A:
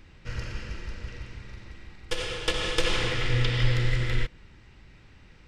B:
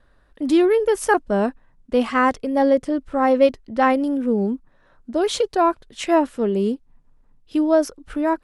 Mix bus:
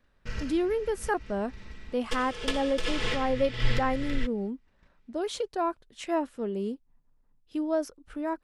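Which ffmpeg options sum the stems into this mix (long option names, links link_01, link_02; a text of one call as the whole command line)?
ffmpeg -i stem1.wav -i stem2.wav -filter_complex "[0:a]agate=range=-20dB:threshold=-47dB:ratio=16:detection=peak,aecho=1:1:4.6:0.46,volume=-1dB[link_01];[1:a]volume=-11dB,asplit=2[link_02][link_03];[link_03]apad=whole_len=241855[link_04];[link_01][link_04]sidechaincompress=threshold=-36dB:ratio=8:attack=38:release=210[link_05];[link_05][link_02]amix=inputs=2:normalize=0" out.wav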